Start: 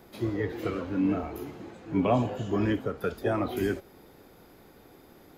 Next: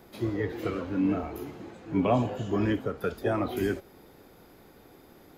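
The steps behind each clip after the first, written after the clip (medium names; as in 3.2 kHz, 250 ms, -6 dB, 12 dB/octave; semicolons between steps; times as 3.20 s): no audible change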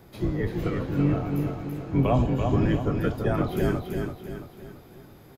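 octave divider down 1 oct, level +3 dB; feedback delay 335 ms, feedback 44%, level -5 dB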